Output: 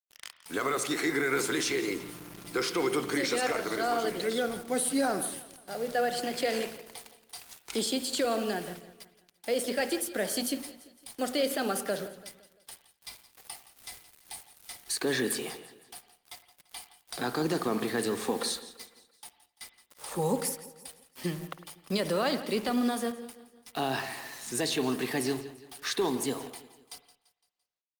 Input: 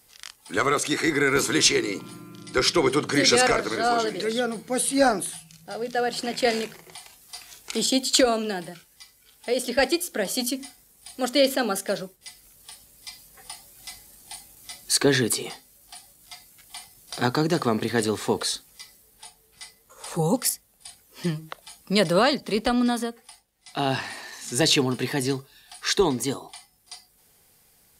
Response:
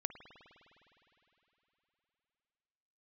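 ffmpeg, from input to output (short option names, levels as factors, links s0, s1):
-filter_complex "[0:a]asettb=1/sr,asplit=3[s0][s1][s2];[s0]atrim=end=18.274[s3];[s1]atrim=start=18.27:end=18.68,asetpts=PTS-STARTPTS,afade=t=in:d=0.004:c=qsin,afade=t=out:st=0.406:d=0.004:c=qsin,aecho=1:1:3.8:0.52,atrim=end_sample=18081[s4];[s2]atrim=start=18.676[s5];[s3][s4]acrossfade=d=0.004:c1=hsin:c2=qsin[s6];[s6][s5]acrossfade=d=0.004:c1=qsin:c2=hsin,acrossover=split=170[s7][s8];[s7]acompressor=threshold=0.00355:ratio=5[s9];[s9][s8]amix=inputs=2:normalize=0,alimiter=limit=0.15:level=0:latency=1:release=60,asplit=3[s10][s11][s12];[s10]afade=t=out:st=3.29:d=0.02[s13];[s11]aeval=exprs='sgn(val(0))*max(abs(val(0))-0.00596,0)':c=same,afade=t=in:st=3.29:d=0.02,afade=t=out:st=4.03:d=0.02[s14];[s12]afade=t=in:st=4.03:d=0.02[s15];[s13][s14][s15]amix=inputs=3:normalize=0,acrusher=bits=6:mix=0:aa=0.000001,aecho=1:1:170|340|510|680:0.15|0.0718|0.0345|0.0165[s16];[1:a]atrim=start_sample=2205,afade=t=out:st=0.25:d=0.01,atrim=end_sample=11466[s17];[s16][s17]afir=irnorm=-1:irlink=0,volume=0.841" -ar 48000 -c:a libopus -b:a 32k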